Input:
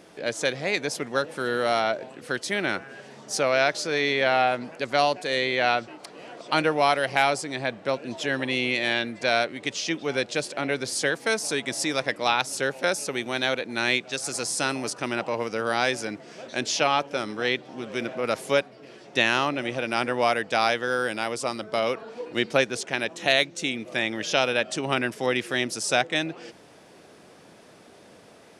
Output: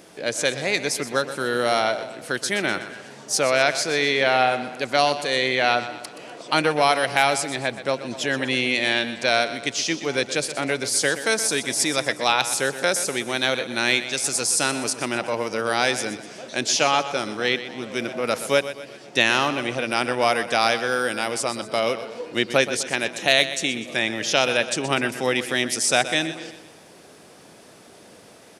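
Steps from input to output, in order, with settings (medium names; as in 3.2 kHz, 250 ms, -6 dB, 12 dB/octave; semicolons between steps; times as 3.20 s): treble shelf 6.1 kHz +9 dB; on a send: feedback delay 124 ms, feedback 46%, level -12.5 dB; on the sum: trim +2 dB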